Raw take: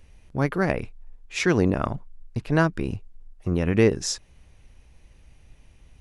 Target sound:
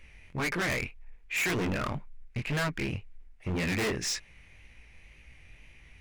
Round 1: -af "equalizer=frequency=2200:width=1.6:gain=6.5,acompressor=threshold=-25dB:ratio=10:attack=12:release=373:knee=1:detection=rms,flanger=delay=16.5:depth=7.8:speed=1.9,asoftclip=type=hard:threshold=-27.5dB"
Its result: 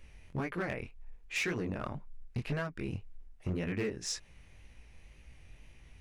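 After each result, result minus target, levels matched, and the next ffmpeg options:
downward compressor: peak gain reduction +14.5 dB; 2,000 Hz band −2.5 dB
-af "equalizer=frequency=2200:width=1.6:gain=6.5,flanger=delay=16.5:depth=7.8:speed=1.9,asoftclip=type=hard:threshold=-27.5dB"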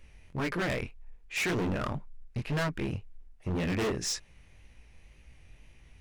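2,000 Hz band −2.5 dB
-af "equalizer=frequency=2200:width=1.6:gain=16.5,flanger=delay=16.5:depth=7.8:speed=1.9,asoftclip=type=hard:threshold=-27.5dB"

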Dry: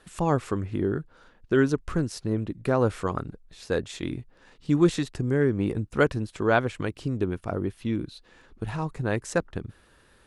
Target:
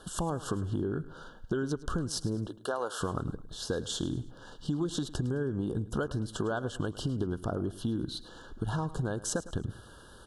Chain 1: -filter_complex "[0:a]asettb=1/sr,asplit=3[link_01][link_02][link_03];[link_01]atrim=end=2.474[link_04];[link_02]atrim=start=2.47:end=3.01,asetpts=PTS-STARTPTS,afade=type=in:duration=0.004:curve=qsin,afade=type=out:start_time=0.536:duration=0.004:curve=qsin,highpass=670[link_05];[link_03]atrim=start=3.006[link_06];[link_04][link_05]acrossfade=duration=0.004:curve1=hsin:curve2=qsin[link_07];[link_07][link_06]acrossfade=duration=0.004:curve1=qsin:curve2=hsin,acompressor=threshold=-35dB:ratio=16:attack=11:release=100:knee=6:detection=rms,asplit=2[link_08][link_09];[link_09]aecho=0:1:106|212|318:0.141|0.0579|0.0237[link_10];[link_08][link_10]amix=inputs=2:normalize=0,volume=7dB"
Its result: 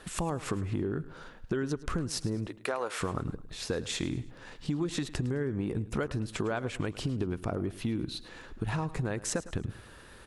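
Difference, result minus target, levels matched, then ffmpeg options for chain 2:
2,000 Hz band +2.5 dB
-filter_complex "[0:a]asettb=1/sr,asplit=3[link_01][link_02][link_03];[link_01]atrim=end=2.474[link_04];[link_02]atrim=start=2.47:end=3.01,asetpts=PTS-STARTPTS,afade=type=in:duration=0.004:curve=qsin,afade=type=out:start_time=0.536:duration=0.004:curve=qsin,highpass=670[link_05];[link_03]atrim=start=3.006[link_06];[link_04][link_05]acrossfade=duration=0.004:curve1=hsin:curve2=qsin[link_07];[link_07][link_06]acrossfade=duration=0.004:curve1=qsin:curve2=hsin,acompressor=threshold=-35dB:ratio=16:attack=11:release=100:knee=6:detection=rms,asuperstop=centerf=2200:order=20:qfactor=1.9,asplit=2[link_08][link_09];[link_09]aecho=0:1:106|212|318:0.141|0.0579|0.0237[link_10];[link_08][link_10]amix=inputs=2:normalize=0,volume=7dB"

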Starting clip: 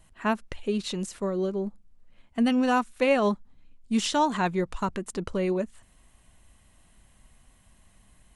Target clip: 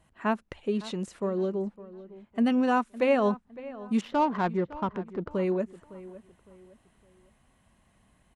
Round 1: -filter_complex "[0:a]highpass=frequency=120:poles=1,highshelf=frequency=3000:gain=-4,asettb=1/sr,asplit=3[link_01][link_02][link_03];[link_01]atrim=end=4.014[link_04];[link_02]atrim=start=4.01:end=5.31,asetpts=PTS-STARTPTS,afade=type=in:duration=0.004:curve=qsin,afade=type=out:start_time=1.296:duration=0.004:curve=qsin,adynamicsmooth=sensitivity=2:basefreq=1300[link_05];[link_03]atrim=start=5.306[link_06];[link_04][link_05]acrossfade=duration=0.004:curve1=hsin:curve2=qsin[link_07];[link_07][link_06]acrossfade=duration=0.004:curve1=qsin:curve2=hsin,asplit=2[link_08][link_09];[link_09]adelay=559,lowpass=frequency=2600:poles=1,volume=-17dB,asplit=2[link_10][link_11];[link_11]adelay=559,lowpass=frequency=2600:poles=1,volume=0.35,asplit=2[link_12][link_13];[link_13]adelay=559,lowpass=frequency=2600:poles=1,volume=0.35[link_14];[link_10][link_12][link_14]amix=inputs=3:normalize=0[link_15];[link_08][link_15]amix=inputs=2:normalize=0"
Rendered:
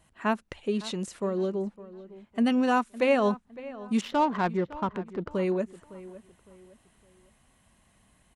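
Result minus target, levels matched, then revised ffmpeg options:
8,000 Hz band +5.5 dB
-filter_complex "[0:a]highpass=frequency=120:poles=1,highshelf=frequency=3000:gain=-11,asettb=1/sr,asplit=3[link_01][link_02][link_03];[link_01]atrim=end=4.014[link_04];[link_02]atrim=start=4.01:end=5.31,asetpts=PTS-STARTPTS,afade=type=in:duration=0.004:curve=qsin,afade=type=out:start_time=1.296:duration=0.004:curve=qsin,adynamicsmooth=sensitivity=2:basefreq=1300[link_05];[link_03]atrim=start=5.306[link_06];[link_04][link_05]acrossfade=duration=0.004:curve1=hsin:curve2=qsin[link_07];[link_07][link_06]acrossfade=duration=0.004:curve1=qsin:curve2=hsin,asplit=2[link_08][link_09];[link_09]adelay=559,lowpass=frequency=2600:poles=1,volume=-17dB,asplit=2[link_10][link_11];[link_11]adelay=559,lowpass=frequency=2600:poles=1,volume=0.35,asplit=2[link_12][link_13];[link_13]adelay=559,lowpass=frequency=2600:poles=1,volume=0.35[link_14];[link_10][link_12][link_14]amix=inputs=3:normalize=0[link_15];[link_08][link_15]amix=inputs=2:normalize=0"

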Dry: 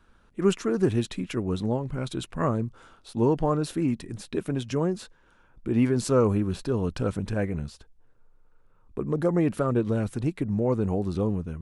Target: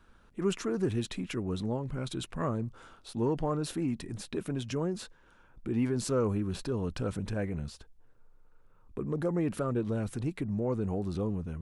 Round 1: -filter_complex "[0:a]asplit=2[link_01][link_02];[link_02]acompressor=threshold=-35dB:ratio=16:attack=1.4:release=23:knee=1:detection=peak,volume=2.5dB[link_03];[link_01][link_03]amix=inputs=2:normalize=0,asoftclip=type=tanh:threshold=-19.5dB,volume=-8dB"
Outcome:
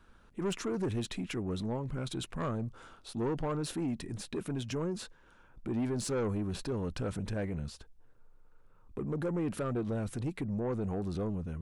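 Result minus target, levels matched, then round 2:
soft clipping: distortion +17 dB
-filter_complex "[0:a]asplit=2[link_01][link_02];[link_02]acompressor=threshold=-35dB:ratio=16:attack=1.4:release=23:knee=1:detection=peak,volume=2.5dB[link_03];[link_01][link_03]amix=inputs=2:normalize=0,asoftclip=type=tanh:threshold=-7.5dB,volume=-8dB"

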